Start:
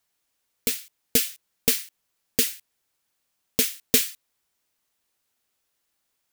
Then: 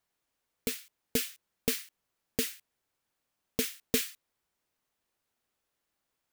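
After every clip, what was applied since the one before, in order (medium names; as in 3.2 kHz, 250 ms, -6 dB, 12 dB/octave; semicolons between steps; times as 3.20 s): treble shelf 2.4 kHz -8.5 dB; in parallel at -1 dB: peak limiter -18 dBFS, peak gain reduction 10 dB; on the sum: trim -6.5 dB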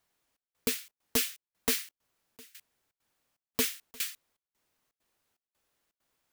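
wavefolder -23 dBFS; trance gate "xxxx..xxxx." 165 bpm -24 dB; trim +4.5 dB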